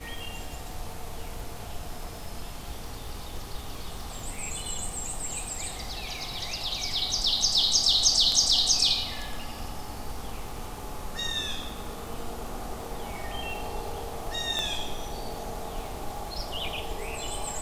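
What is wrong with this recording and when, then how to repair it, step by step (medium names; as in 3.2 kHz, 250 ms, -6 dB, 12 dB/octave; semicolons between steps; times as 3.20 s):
crackle 53 per s -37 dBFS
14.59 s: pop -16 dBFS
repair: de-click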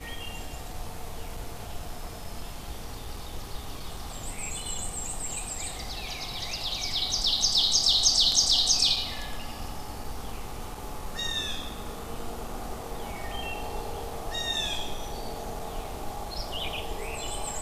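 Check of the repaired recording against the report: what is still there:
14.59 s: pop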